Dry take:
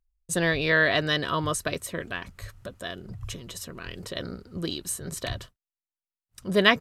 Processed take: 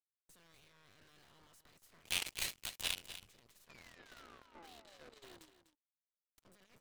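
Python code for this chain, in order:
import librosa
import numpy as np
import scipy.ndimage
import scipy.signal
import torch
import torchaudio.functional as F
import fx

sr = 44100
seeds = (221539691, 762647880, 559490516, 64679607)

y = fx.spec_clip(x, sr, under_db=20)
y = fx.cheby1_bandpass(y, sr, low_hz=220.0, high_hz=4000.0, order=5, at=(3.95, 5.32))
y = fx.over_compress(y, sr, threshold_db=-31.0, ratio=-1.0)
y = fx.tube_stage(y, sr, drive_db=40.0, bias=0.75)
y = fx.high_shelf_res(y, sr, hz=2000.0, db=8.0, q=3.0, at=(2.04, 3.16), fade=0.02)
y = fx.spec_paint(y, sr, seeds[0], shape='fall', start_s=3.69, length_s=1.82, low_hz=290.0, high_hz=2500.0, level_db=-44.0)
y = fx.power_curve(y, sr, exponent=3.0)
y = y + 10.0 ** (-12.5 / 20.0) * np.pad(y, (int(248 * sr / 1000.0), 0))[:len(y)]
y = y * librosa.db_to_amplitude(8.5)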